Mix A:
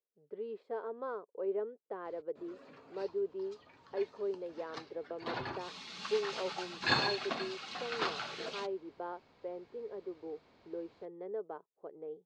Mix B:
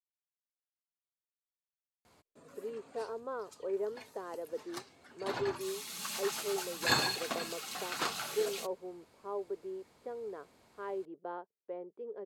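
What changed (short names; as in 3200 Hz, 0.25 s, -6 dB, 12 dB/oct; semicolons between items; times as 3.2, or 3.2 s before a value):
speech: entry +2.25 s; background: remove LPF 4800 Hz 24 dB/oct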